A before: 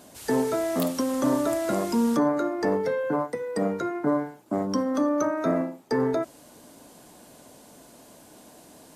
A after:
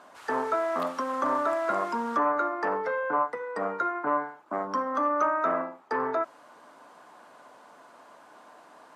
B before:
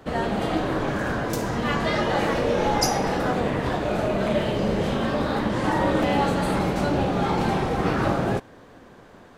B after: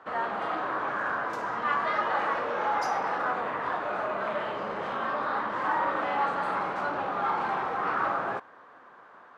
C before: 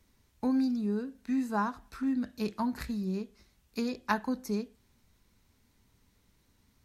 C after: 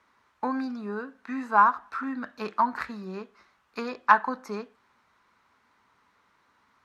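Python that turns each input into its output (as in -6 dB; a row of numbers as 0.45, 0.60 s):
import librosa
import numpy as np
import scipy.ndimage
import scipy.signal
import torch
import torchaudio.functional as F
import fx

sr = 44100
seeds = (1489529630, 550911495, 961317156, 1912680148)

y = fx.fold_sine(x, sr, drive_db=7, ceiling_db=-7.5)
y = fx.bandpass_q(y, sr, hz=1200.0, q=2.3)
y = y * 10.0 ** (-30 / 20.0) / np.sqrt(np.mean(np.square(y)))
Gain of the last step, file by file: -1.5, -6.0, +6.0 dB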